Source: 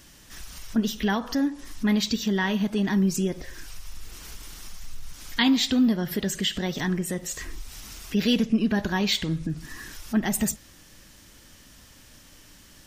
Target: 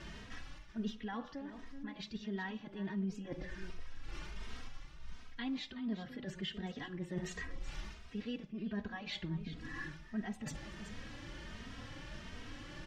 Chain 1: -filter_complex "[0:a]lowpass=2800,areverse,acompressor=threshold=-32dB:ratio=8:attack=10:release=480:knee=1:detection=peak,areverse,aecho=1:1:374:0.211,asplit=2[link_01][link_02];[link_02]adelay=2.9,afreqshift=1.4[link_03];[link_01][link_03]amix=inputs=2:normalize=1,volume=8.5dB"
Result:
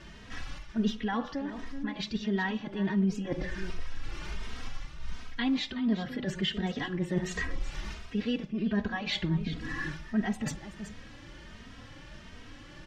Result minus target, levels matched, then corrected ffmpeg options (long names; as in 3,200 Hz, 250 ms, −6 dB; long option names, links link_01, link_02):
downward compressor: peak gain reduction −10.5 dB
-filter_complex "[0:a]lowpass=2800,areverse,acompressor=threshold=-44dB:ratio=8:attack=10:release=480:knee=1:detection=peak,areverse,aecho=1:1:374:0.211,asplit=2[link_01][link_02];[link_02]adelay=2.9,afreqshift=1.4[link_03];[link_01][link_03]amix=inputs=2:normalize=1,volume=8.5dB"